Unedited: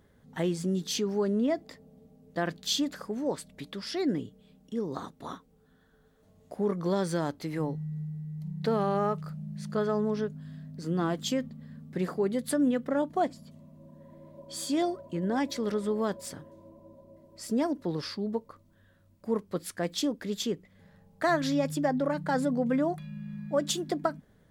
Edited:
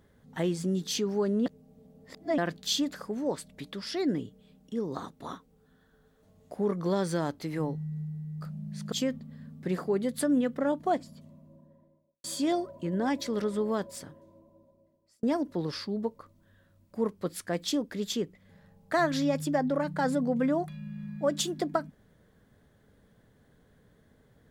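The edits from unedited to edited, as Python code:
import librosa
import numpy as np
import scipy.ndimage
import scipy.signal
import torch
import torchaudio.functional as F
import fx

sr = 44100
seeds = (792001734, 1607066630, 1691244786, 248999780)

y = fx.studio_fade_out(x, sr, start_s=13.39, length_s=1.15)
y = fx.edit(y, sr, fx.reverse_span(start_s=1.46, length_s=0.92),
    fx.cut(start_s=8.41, length_s=0.84),
    fx.cut(start_s=9.76, length_s=1.46),
    fx.fade_out_span(start_s=15.96, length_s=1.57), tone=tone)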